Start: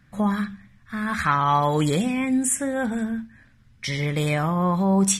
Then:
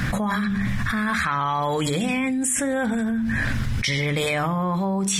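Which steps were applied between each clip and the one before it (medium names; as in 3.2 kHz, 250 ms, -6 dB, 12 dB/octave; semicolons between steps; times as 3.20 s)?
hum notches 50/100/150/200/250/300/350/400 Hz; dynamic bell 2.9 kHz, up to +3 dB, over -37 dBFS, Q 0.71; level flattener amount 100%; trim -6 dB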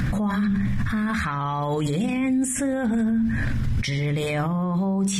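bass shelf 460 Hz +10.5 dB; peak limiter -17 dBFS, peak gain reduction 11.5 dB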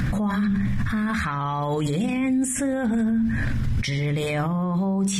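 no audible change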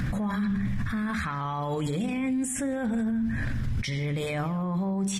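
speakerphone echo 160 ms, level -14 dB; trim -5 dB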